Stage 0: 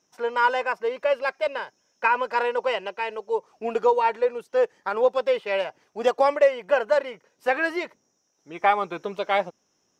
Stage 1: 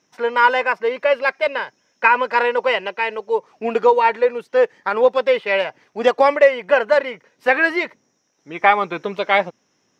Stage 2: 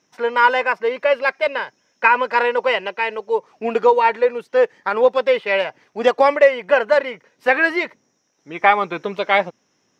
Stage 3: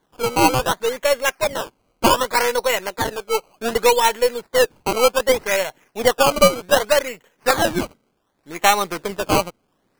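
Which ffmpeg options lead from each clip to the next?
-af "equalizer=f=125:t=o:w=1:g=8,equalizer=f=250:t=o:w=1:g=7,equalizer=f=500:t=o:w=1:g=4,equalizer=f=1k:t=o:w=1:g=4,equalizer=f=2k:t=o:w=1:g=10,equalizer=f=4k:t=o:w=1:g=6,volume=-1dB"
-af anull
-af "aeval=exprs='if(lt(val(0),0),0.708*val(0),val(0))':c=same,acrusher=samples=17:mix=1:aa=0.000001:lfo=1:lforange=17:lforate=0.66"

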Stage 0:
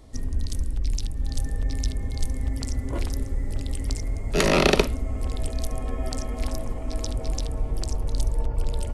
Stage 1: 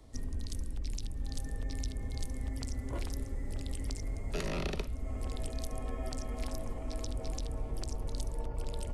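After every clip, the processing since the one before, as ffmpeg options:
-filter_complex "[0:a]acrossover=split=150|440[a][b][c];[a]acompressor=threshold=-26dB:ratio=4[d];[b]acompressor=threshold=-38dB:ratio=4[e];[c]acompressor=threshold=-34dB:ratio=4[f];[d][e][f]amix=inputs=3:normalize=0,volume=-6.5dB"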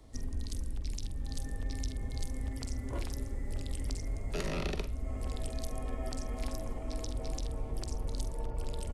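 -filter_complex "[0:a]asplit=2[a][b];[b]adelay=46,volume=-11dB[c];[a][c]amix=inputs=2:normalize=0"

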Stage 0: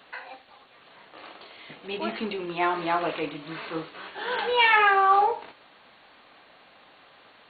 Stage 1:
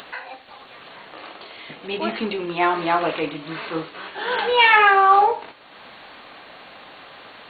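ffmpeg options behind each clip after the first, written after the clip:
-af "acompressor=mode=upward:threshold=-40dB:ratio=2.5,volume=5.5dB"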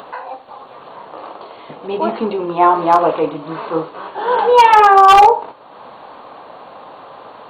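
-af "equalizer=f=125:t=o:w=1:g=6,equalizer=f=250:t=o:w=1:g=3,equalizer=f=500:t=o:w=1:g=8,equalizer=f=1k:t=o:w=1:g=12,equalizer=f=2k:t=o:w=1:g=-8,equalizer=f=4k:t=o:w=1:g=-3,aeval=exprs='1*(abs(mod(val(0)/1+3,4)-2)-1)':c=same,volume=-1dB"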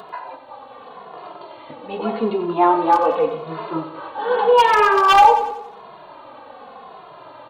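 -filter_complex "[0:a]asplit=2[a][b];[b]aecho=0:1:91|182|273|364|455|546:0.282|0.155|0.0853|0.0469|0.0258|0.0142[c];[a][c]amix=inputs=2:normalize=0,asplit=2[d][e];[e]adelay=2.4,afreqshift=-0.86[f];[d][f]amix=inputs=2:normalize=1,volume=-1dB"

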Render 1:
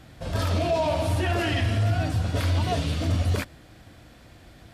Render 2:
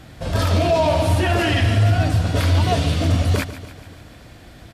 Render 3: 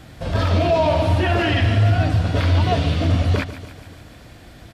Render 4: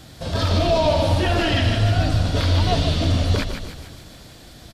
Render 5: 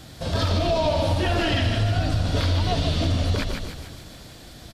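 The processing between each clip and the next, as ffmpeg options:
-af "aecho=1:1:145|290|435|580|725|870:0.2|0.116|0.0671|0.0389|0.0226|0.0131,volume=6.5dB"
-filter_complex "[0:a]acrossover=split=4800[a][b];[b]acompressor=threshold=-51dB:ratio=4:attack=1:release=60[c];[a][c]amix=inputs=2:normalize=0"
-filter_complex "[0:a]highshelf=f=3.1k:t=q:w=1.5:g=6,bandreject=f=50:t=h:w=6,bandreject=f=100:t=h:w=6,asplit=6[a][b][c][d][e][f];[b]adelay=154,afreqshift=-55,volume=-8.5dB[g];[c]adelay=308,afreqshift=-110,volume=-15.8dB[h];[d]adelay=462,afreqshift=-165,volume=-23.2dB[i];[e]adelay=616,afreqshift=-220,volume=-30.5dB[j];[f]adelay=770,afreqshift=-275,volume=-37.8dB[k];[a][g][h][i][j][k]amix=inputs=6:normalize=0,volume=-1.5dB"
-af "acompressor=threshold=-18dB:ratio=6"

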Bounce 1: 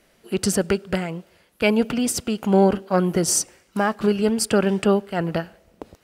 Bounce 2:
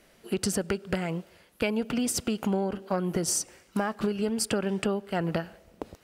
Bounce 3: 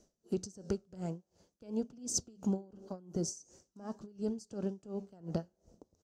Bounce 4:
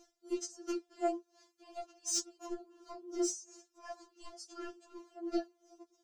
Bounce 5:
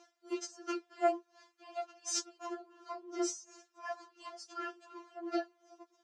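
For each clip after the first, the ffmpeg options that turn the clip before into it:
-af "acompressor=threshold=-24dB:ratio=12"
-af "firequalizer=gain_entry='entry(240,0);entry(2100,-22);entry(6200,7);entry(10000,-15)':delay=0.05:min_phase=1,flanger=delay=4.6:depth=8.7:regen=-88:speed=0.49:shape=triangular,aeval=exprs='val(0)*pow(10,-24*(0.5-0.5*cos(2*PI*2.8*n/s))/20)':c=same,volume=1.5dB"
-filter_complex "[0:a]flanger=delay=4.4:depth=9.2:regen=-54:speed=1.7:shape=triangular,asplit=2[a][b];[b]highpass=f=720:p=1,volume=15dB,asoftclip=type=tanh:threshold=-22.5dB[c];[a][c]amix=inputs=2:normalize=0,lowpass=f=3.9k:p=1,volume=-6dB,afftfilt=real='re*4*eq(mod(b,16),0)':imag='im*4*eq(mod(b,16),0)':win_size=2048:overlap=0.75,volume=6.5dB"
-af "bandpass=f=1.5k:t=q:w=0.84:csg=0,volume=9.5dB"

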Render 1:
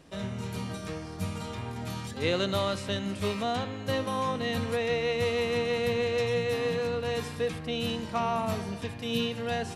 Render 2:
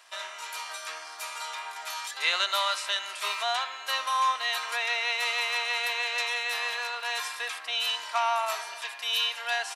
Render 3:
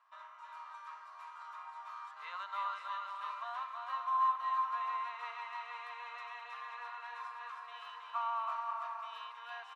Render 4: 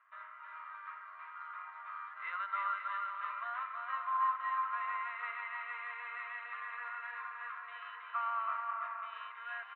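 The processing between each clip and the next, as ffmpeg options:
-af "highpass=f=900:w=0.5412,highpass=f=900:w=1.3066,aecho=1:1:3:0.34,acontrast=81"
-filter_complex "[0:a]bandpass=f=1.1k:t=q:w=6:csg=0,asplit=2[a][b];[b]aecho=0:1:320|528|663.2|751.1|808.2:0.631|0.398|0.251|0.158|0.1[c];[a][c]amix=inputs=2:normalize=0,volume=-3.5dB"
-af "tremolo=f=99:d=0.261,highpass=430,equalizer=f=860:t=q:w=4:g=-10,equalizer=f=1.4k:t=q:w=4:g=8,equalizer=f=2k:t=q:w=4:g=9,lowpass=f=2.8k:w=0.5412,lowpass=f=2.8k:w=1.3066,volume=1dB"

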